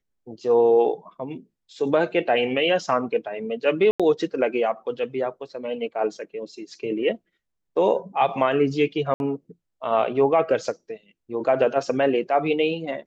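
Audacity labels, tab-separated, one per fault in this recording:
3.910000	4.000000	gap 86 ms
9.140000	9.200000	gap 61 ms

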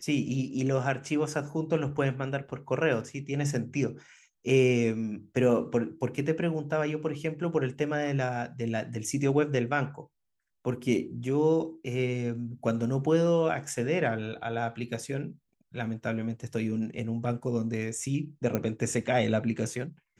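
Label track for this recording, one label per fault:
18.550000	18.550000	pop -15 dBFS

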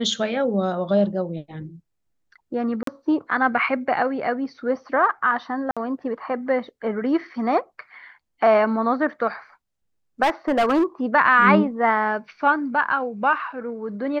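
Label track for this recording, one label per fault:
2.830000	2.870000	gap 43 ms
5.710000	5.770000	gap 56 ms
10.220000	10.840000	clipped -15 dBFS

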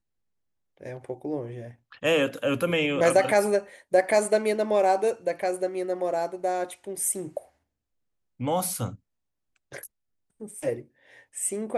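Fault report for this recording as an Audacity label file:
3.240000	3.240000	gap 3 ms

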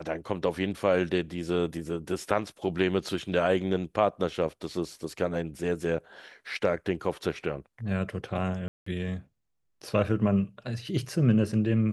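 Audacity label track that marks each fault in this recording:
8.680000	8.860000	gap 0.184 s

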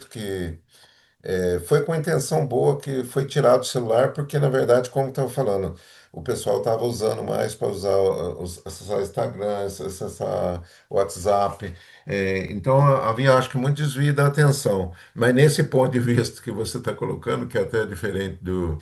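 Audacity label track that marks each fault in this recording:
12.480000	12.480000	gap 4 ms

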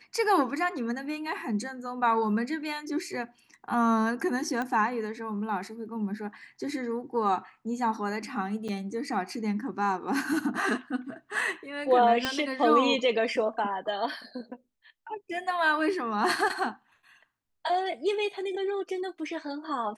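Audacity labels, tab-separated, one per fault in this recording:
4.620000	4.620000	pop -20 dBFS
8.680000	8.690000	gap 6.4 ms
12.250000	12.250000	pop -12 dBFS

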